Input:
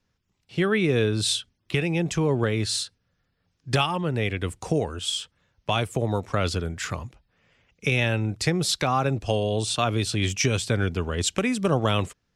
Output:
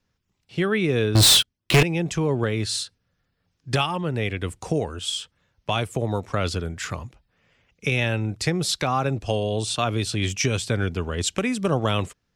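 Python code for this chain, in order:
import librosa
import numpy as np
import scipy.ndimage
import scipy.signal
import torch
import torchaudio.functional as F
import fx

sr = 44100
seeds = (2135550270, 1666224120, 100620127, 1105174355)

y = fx.leveller(x, sr, passes=5, at=(1.15, 1.83))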